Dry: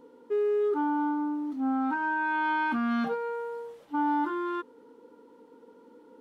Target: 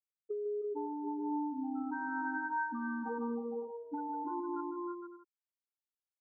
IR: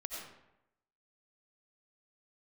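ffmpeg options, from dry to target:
-af "afftfilt=real='re*gte(hypot(re,im),0.126)':imag='im*gte(hypot(re,im),0.126)':win_size=1024:overlap=0.75,acompressor=threshold=-39dB:ratio=6,aecho=1:1:152|312|337|460|555|627:0.299|0.501|0.335|0.531|0.224|0.141,volume=1dB"

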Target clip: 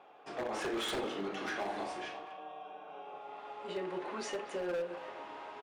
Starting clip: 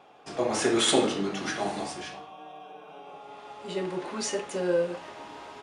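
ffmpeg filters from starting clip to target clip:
ffmpeg -i in.wav -filter_complex "[0:a]bass=frequency=250:gain=-11,treble=frequency=4000:gain=-13,acompressor=threshold=-33dB:ratio=2,aeval=exprs='0.0422*(abs(mod(val(0)/0.0422+3,4)-2)-1)':channel_layout=same,asplit=3[link_01][link_02][link_03];[link_01]afade=type=out:start_time=1.36:duration=0.02[link_04];[link_02]asplit=2[link_05][link_06];[link_06]adelay=38,volume=-7.5dB[link_07];[link_05][link_07]amix=inputs=2:normalize=0,afade=type=in:start_time=1.36:duration=0.02,afade=type=out:start_time=3.71:duration=0.02[link_08];[link_03]afade=type=in:start_time=3.71:duration=0.02[link_09];[link_04][link_08][link_09]amix=inputs=3:normalize=0,asplit=2[link_10][link_11];[link_11]adelay=240,highpass=300,lowpass=3400,asoftclip=type=hard:threshold=-34dB,volume=-12dB[link_12];[link_10][link_12]amix=inputs=2:normalize=0,volume=-2.5dB" out.wav

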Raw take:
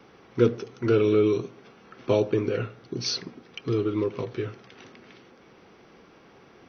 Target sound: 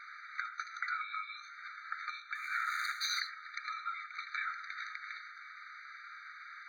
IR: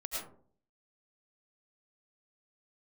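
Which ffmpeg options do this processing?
-filter_complex "[0:a]asettb=1/sr,asplit=3[link_01][link_02][link_03];[link_01]atrim=end=2.354[link_04];[link_02]atrim=start=2.35:end=3.2,asetpts=PTS-STARTPTS,afade=type=in:duration=0.004:curve=qsin,afade=type=out:start_time=0.846:duration=0.004:curve=qsin,aeval=exprs='val(0)+0.5*0.0158*sgn(val(0))':channel_layout=same[link_05];[link_03]atrim=start=3.196[link_06];[link_04][link_05]acrossfade=duration=0.004:curve1=hsin:curve2=qsin[link_07];[link_07][link_06]acrossfade=duration=0.004:curve1=qsin:curve2=hsin,alimiter=limit=-18.5dB:level=0:latency=1:release=243,acompressor=threshold=-29dB:ratio=6,asplit=2[link_08][link_09];[1:a]atrim=start_sample=2205,asetrate=61740,aresample=44100[link_10];[link_09][link_10]afir=irnorm=-1:irlink=0,volume=-9dB[link_11];[link_08][link_11]amix=inputs=2:normalize=0,afftfilt=real='re*lt(hypot(re,im),0.0562)':imag='im*lt(hypot(re,im),0.0562)':win_size=1024:overlap=0.75,lowpass=frequency=2100:poles=1,afftfilt=real='re*eq(mod(floor(b*sr/1024/1200),2),1)':imag='im*eq(mod(floor(b*sr/1024/1200),2),1)':win_size=1024:overlap=0.75,volume=13dB"

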